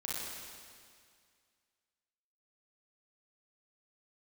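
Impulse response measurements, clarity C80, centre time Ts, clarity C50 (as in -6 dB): -1.0 dB, 148 ms, -4.0 dB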